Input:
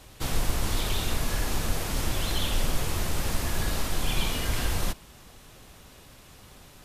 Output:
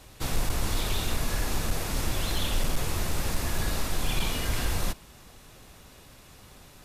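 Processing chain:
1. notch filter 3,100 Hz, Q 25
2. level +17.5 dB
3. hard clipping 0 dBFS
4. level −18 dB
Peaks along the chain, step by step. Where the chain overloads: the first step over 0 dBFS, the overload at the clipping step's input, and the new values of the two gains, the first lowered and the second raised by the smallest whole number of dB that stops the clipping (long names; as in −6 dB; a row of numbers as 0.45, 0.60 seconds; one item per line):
−12.0, +5.5, 0.0, −18.0 dBFS
step 2, 5.5 dB
step 2 +11.5 dB, step 4 −12 dB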